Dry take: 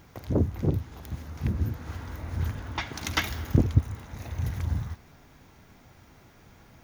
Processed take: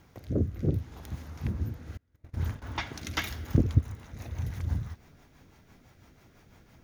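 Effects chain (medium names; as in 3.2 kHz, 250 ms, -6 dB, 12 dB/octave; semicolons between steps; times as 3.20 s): 1.97–2.62 s: gate -32 dBFS, range -31 dB; rotary cabinet horn 0.65 Hz, later 6 Hz, at 2.79 s; trim -1.5 dB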